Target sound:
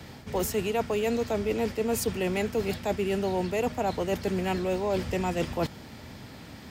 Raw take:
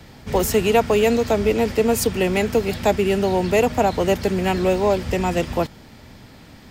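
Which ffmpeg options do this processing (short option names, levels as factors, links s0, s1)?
-af "highpass=57,areverse,acompressor=threshold=0.0562:ratio=6,areverse"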